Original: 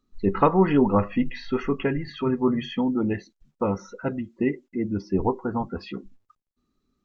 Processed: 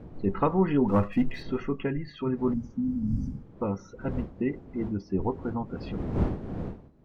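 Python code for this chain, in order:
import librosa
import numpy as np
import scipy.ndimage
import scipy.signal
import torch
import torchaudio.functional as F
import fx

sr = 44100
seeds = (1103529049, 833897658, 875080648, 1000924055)

y = fx.dmg_wind(x, sr, seeds[0], corner_hz=330.0, level_db=-33.0)
y = fx.low_shelf(y, sr, hz=300.0, db=5.5)
y = fx.leveller(y, sr, passes=1, at=(0.88, 1.43))
y = fx.spec_repair(y, sr, seeds[1], start_s=2.56, length_s=0.9, low_hz=280.0, high_hz=4600.0, source='after')
y = y * librosa.db_to_amplitude(-7.5)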